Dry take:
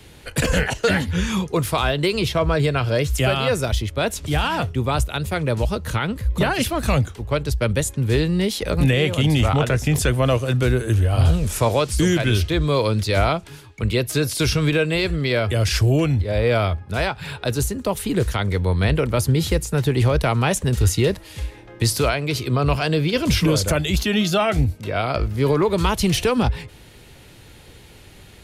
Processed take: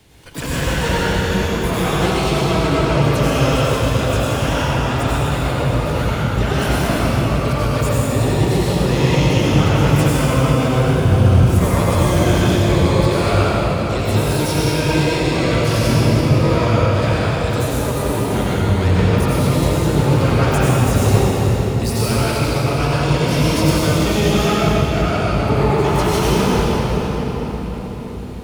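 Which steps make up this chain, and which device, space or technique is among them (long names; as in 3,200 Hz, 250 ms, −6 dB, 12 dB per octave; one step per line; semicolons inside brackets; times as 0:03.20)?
shimmer-style reverb (pitch-shifted copies added +12 semitones −6 dB; convolution reverb RT60 5.4 s, pre-delay 81 ms, DRR −9 dB)
level −7.5 dB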